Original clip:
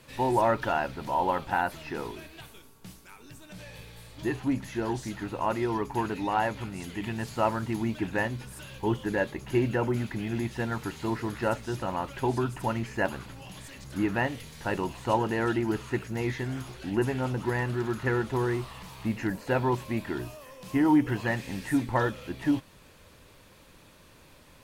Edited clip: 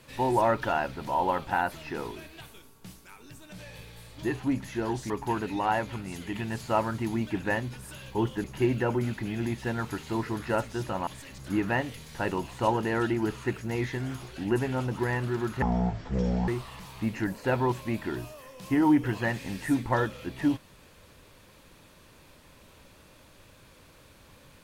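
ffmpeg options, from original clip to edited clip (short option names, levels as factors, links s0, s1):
-filter_complex "[0:a]asplit=6[s0][s1][s2][s3][s4][s5];[s0]atrim=end=5.102[s6];[s1]atrim=start=5.778:end=9.122[s7];[s2]atrim=start=9.368:end=12.002[s8];[s3]atrim=start=13.528:end=18.084[s9];[s4]atrim=start=18.08:end=18.51,asetpts=PTS-STARTPTS,asetrate=22050,aresample=44100[s10];[s5]atrim=start=18.506[s11];[s6][s7]acrossfade=d=0.004:c1=hsin:c2=hsin[s12];[s12][s8]acrossfade=d=0.004:c1=hsin:c2=hsin[s13];[s13][s9]acrossfade=d=0.004:c1=hsin:c2=hsin[s14];[s14][s10]acrossfade=d=0.004:c1=hsin:c2=hsin[s15];[s15][s11]acrossfade=d=0.004:c1=hsin:c2=hsin"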